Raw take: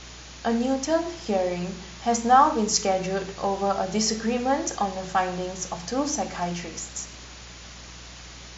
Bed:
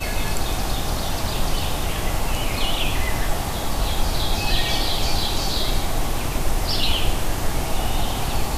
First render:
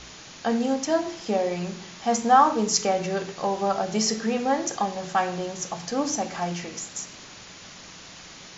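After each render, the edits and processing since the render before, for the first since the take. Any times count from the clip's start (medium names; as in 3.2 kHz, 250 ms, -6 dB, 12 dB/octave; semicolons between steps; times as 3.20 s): de-hum 60 Hz, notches 2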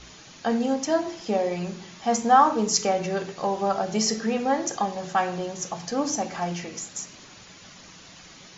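noise reduction 6 dB, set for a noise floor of -45 dBFS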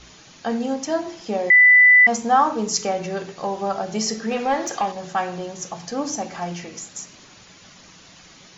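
1.50–2.07 s: bleep 1.99 kHz -8 dBFS; 4.31–4.92 s: overdrive pedal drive 13 dB, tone 3.4 kHz, clips at -12 dBFS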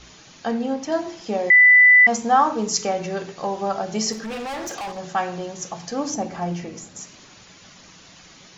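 0.51–0.92 s: distance through air 96 m; 4.12–4.98 s: hard clipper -28 dBFS; 6.14–7.01 s: tilt shelf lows +5 dB, about 860 Hz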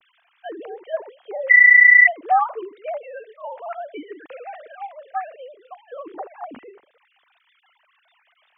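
formants replaced by sine waves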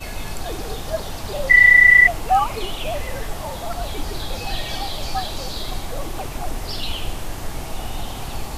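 add bed -6 dB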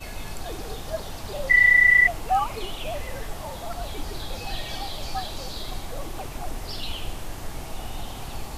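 trim -5.5 dB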